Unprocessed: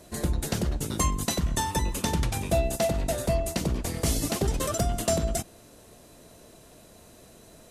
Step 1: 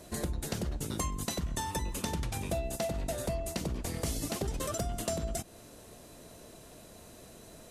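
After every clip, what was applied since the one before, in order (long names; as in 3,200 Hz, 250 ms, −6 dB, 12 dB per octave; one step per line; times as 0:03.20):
downward compressor 3 to 1, threshold −33 dBFS, peak gain reduction 10.5 dB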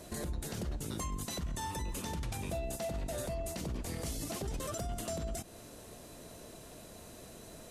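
brickwall limiter −30.5 dBFS, peak gain reduction 10.5 dB
level +1 dB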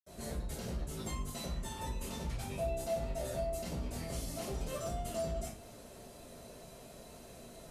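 convolution reverb RT60 0.50 s, pre-delay 64 ms
level +6.5 dB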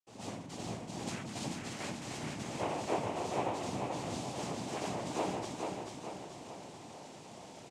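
cochlear-implant simulation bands 4
repeating echo 437 ms, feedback 50%, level −4 dB
level +1 dB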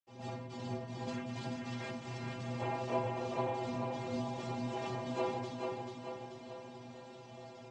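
high-frequency loss of the air 150 metres
stiff-string resonator 120 Hz, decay 0.4 s, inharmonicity 0.008
level +11.5 dB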